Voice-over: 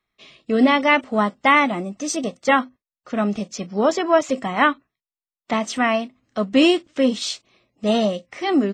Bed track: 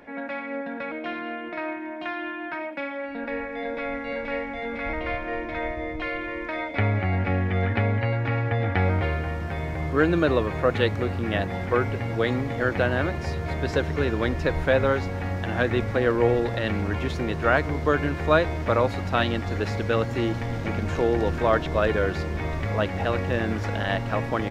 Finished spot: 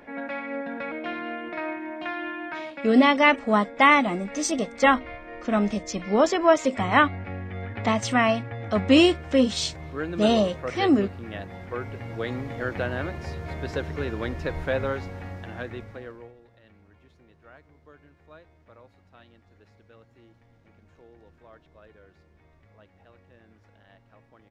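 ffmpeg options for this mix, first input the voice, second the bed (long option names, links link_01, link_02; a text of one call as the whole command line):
ffmpeg -i stem1.wav -i stem2.wav -filter_complex "[0:a]adelay=2350,volume=-1.5dB[link_01];[1:a]volume=4.5dB,afade=type=out:start_time=2.38:duration=0.65:silence=0.316228,afade=type=in:start_time=11.7:duration=0.75:silence=0.562341,afade=type=out:start_time=14.81:duration=1.52:silence=0.0562341[link_02];[link_01][link_02]amix=inputs=2:normalize=0" out.wav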